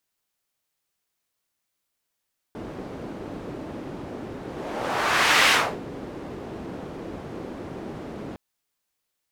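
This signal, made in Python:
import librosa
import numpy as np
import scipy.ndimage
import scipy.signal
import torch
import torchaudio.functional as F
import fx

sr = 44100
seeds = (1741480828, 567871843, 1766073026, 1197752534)

y = fx.whoosh(sr, seeds[0], length_s=5.81, peak_s=2.95, rise_s=1.16, fall_s=0.31, ends_hz=320.0, peak_hz=2200.0, q=1.0, swell_db=18.0)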